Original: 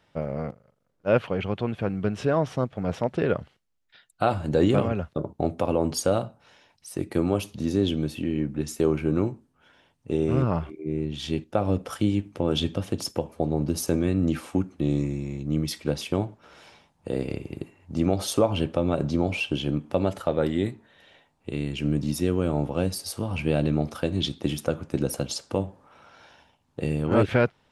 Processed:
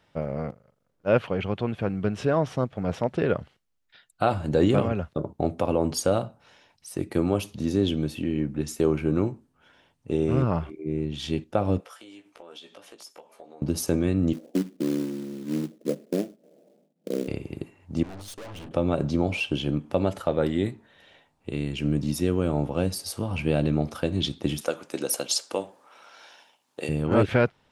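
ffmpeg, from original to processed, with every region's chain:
-filter_complex "[0:a]asettb=1/sr,asplit=3[s0][s1][s2];[s0]atrim=end=11.804[s3];[s1]atrim=start=11.8:end=13.62,asetpts=PTS-STARTPTS,afade=t=in:d=0.004:c=qsin,afade=t=out:st=1.816:d=0.004:c=qsin,highpass=610,acompressor=threshold=0.00316:ratio=2.5:attack=3.2:release=140:knee=1:detection=peak,asplit=2[s4][s5];[s5]adelay=17,volume=0.531[s6];[s4][s6]amix=inputs=2:normalize=0,atrim=end_sample=80262[s7];[s2]atrim=start=13.616[s8];[s3][s7]acrossfade=d=0.004:c1=hsin:c2=qsin[s9];[s9][s8]acrossfade=d=0.004:c1=qsin:c2=hsin,asettb=1/sr,asplit=3[s10][s11][s12];[s10]atrim=end=14.334[s13];[s11]atrim=start=14.33:end=17.28,asetpts=PTS-STARTPTS,afade=t=in:d=0.004:c=qsin,afade=t=out:st=2.946:d=0.004:c=qsin,asuperpass=centerf=330:order=12:qfactor=0.69,acrusher=bits=4:mode=log:mix=0:aa=0.000001[s14];[s12]atrim=start=17.276[s15];[s13][s14]acrossfade=d=0.004:c1=hsin:c2=qsin[s16];[s16][s15]acrossfade=d=0.004:c1=qsin:c2=hsin,asettb=1/sr,asplit=3[s17][s18][s19];[s17]atrim=end=18.034[s20];[s18]atrim=start=18.03:end=18.71,asetpts=PTS-STARTPTS,afade=t=in:d=0.004:c=qsin,afade=t=out:st=0.676:d=0.004:c=qsin,agate=range=0.0891:threshold=0.0251:ratio=16:release=100:detection=peak,bandreject=f=50:t=h:w=6,bandreject=f=100:t=h:w=6,bandreject=f=150:t=h:w=6,bandreject=f=200:t=h:w=6,bandreject=f=250:t=h:w=6,bandreject=f=300:t=h:w=6,bandreject=f=350:t=h:w=6,aeval=exprs='(tanh(89.1*val(0)+0.45)-tanh(0.45))/89.1':c=same[s21];[s19]atrim=start=18.706[s22];[s20][s21]acrossfade=d=0.004:c1=hsin:c2=qsin[s23];[s23][s22]acrossfade=d=0.004:c1=qsin:c2=hsin,asettb=1/sr,asplit=3[s24][s25][s26];[s24]atrim=end=24.614[s27];[s25]atrim=start=24.61:end=26.89,asetpts=PTS-STARTPTS,afade=t=in:d=0.004:c=qsin,afade=t=out:st=2.276:d=0.004:c=qsin,highpass=370,highshelf=f=2700:g=8.5[s28];[s26]atrim=start=26.886[s29];[s27][s28]acrossfade=d=0.004:c1=hsin:c2=qsin[s30];[s30][s29]acrossfade=d=0.004:c1=qsin:c2=hsin"

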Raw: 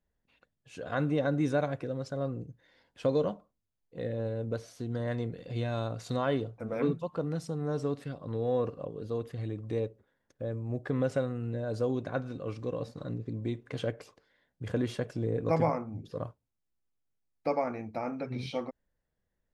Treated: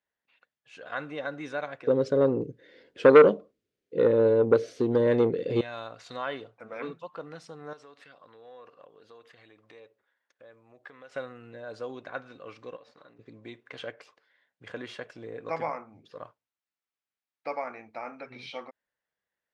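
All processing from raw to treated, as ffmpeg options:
-filter_complex "[0:a]asettb=1/sr,asplit=3[s0][s1][s2];[s0]atrim=end=1.874[s3];[s1]atrim=start=1.87:end=5.61,asetpts=PTS-STARTPTS,afade=t=in:d=0.004:c=qsin,afade=t=out:st=3.736:d=0.004:c=qsin,lowshelf=f=610:t=q:w=3:g=12.5,acontrast=70[s4];[s2]atrim=start=5.606[s5];[s3][s4]acrossfade=d=0.004:c1=hsin:c2=qsin[s6];[s6][s5]acrossfade=d=0.004:c1=qsin:c2=hsin,asettb=1/sr,asplit=3[s7][s8][s9];[s7]atrim=end=7.734[s10];[s8]atrim=start=7.73:end=11.16,asetpts=PTS-STARTPTS,afade=t=in:d=0.004:c=qsin,afade=t=out:st=3.426:d=0.004:c=qsin,lowshelf=f=410:g=-10,acompressor=threshold=0.00631:ratio=2.5:attack=3.2:release=140:knee=1:detection=peak[s11];[s9]atrim=start=11.156[s12];[s10][s11]acrossfade=d=0.004:c1=hsin:c2=qsin[s13];[s13][s12]acrossfade=d=0.004:c1=qsin:c2=hsin,asettb=1/sr,asplit=3[s14][s15][s16];[s14]atrim=end=12.764[s17];[s15]atrim=start=12.76:end=13.19,asetpts=PTS-STARTPTS,afade=t=in:d=0.004:c=qsin,afade=t=out:st=0.426:d=0.004:c=qsin,highpass=f=360:p=1,highshelf=f=8300:g=-11,acompressor=threshold=0.00708:ratio=10:attack=3.2:release=140:knee=1:detection=peak[s18];[s16]atrim=start=13.186[s19];[s17][s18]acrossfade=d=0.004:c1=hsin:c2=qsin[s20];[s20][s19]acrossfade=d=0.004:c1=qsin:c2=hsin,lowpass=2000,aderivative,volume=7.08"

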